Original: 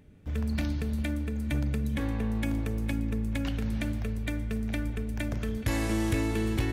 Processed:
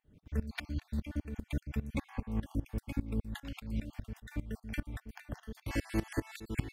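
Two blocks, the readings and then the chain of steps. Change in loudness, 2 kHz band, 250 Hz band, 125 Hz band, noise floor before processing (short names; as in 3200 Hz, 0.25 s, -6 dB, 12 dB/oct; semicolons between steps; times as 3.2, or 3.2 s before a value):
-8.5 dB, -7.5 dB, -8.5 dB, -8.0 dB, -35 dBFS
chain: random spectral dropouts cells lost 41%; bell 8200 Hz -2 dB; dB-ramp tremolo swelling 5 Hz, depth 20 dB; gain +1 dB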